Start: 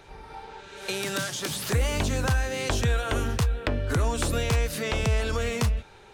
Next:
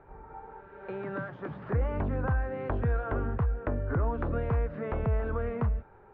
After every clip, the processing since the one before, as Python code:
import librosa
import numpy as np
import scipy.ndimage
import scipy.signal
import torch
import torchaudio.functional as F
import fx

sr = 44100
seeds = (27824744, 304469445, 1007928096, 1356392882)

y = scipy.signal.sosfilt(scipy.signal.butter(4, 1500.0, 'lowpass', fs=sr, output='sos'), x)
y = y * 10.0 ** (-3.5 / 20.0)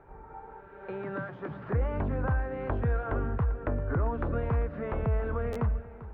y = fx.echo_feedback(x, sr, ms=394, feedback_pct=42, wet_db=-16.0)
y = fx.buffer_glitch(y, sr, at_s=(5.52,), block=512, repeats=2)